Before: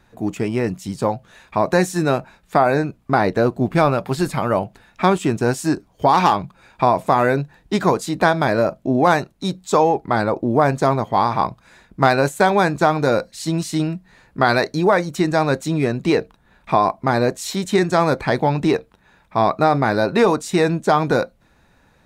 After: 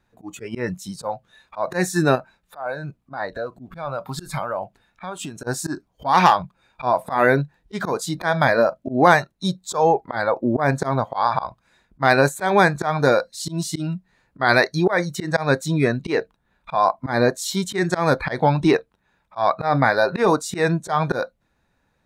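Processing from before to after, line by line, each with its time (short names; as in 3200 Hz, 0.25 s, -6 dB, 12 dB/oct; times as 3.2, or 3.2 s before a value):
2.15–5.47 compressor 16:1, threshold -20 dBFS
whole clip: spectral noise reduction 13 dB; dynamic EQ 1800 Hz, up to +5 dB, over -37 dBFS, Q 2.6; auto swell 0.137 s; gain +1 dB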